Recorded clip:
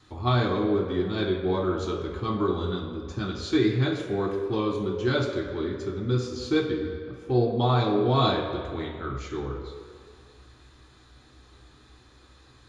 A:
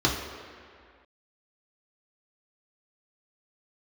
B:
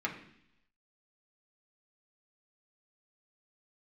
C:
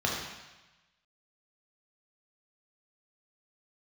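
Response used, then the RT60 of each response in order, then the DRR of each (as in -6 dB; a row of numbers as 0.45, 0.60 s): A; 2.1, 0.70, 1.1 s; -3.5, -2.0, -3.0 dB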